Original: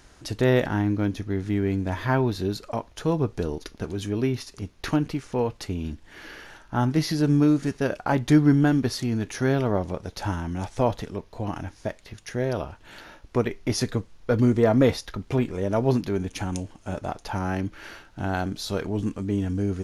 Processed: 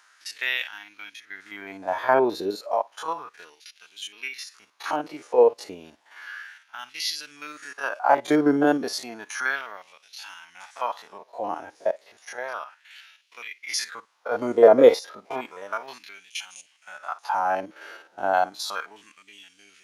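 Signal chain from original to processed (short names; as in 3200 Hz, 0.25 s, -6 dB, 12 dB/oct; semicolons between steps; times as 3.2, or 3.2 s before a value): stepped spectrum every 50 ms; spectral noise reduction 7 dB; LFO high-pass sine 0.32 Hz 470–2800 Hz; gain +4 dB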